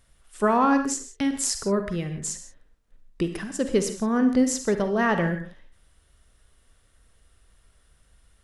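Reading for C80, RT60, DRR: 12.0 dB, non-exponential decay, 7.5 dB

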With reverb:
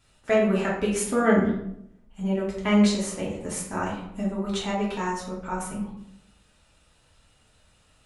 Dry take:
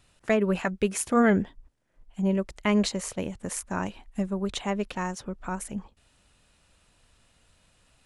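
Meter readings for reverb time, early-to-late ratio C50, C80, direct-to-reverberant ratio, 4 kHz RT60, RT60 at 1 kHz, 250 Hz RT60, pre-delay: 0.75 s, 3.5 dB, 7.5 dB, −6.0 dB, 0.50 s, 0.70 s, 0.90 s, 3 ms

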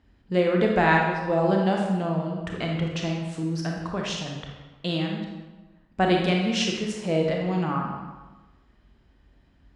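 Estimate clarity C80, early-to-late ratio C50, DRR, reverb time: 4.5 dB, 1.5 dB, 0.0 dB, 1.2 s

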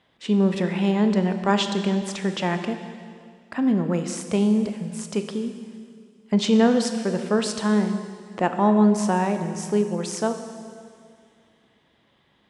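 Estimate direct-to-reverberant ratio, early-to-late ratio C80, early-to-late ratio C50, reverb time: 7.0 dB, 9.0 dB, 8.0 dB, 2.2 s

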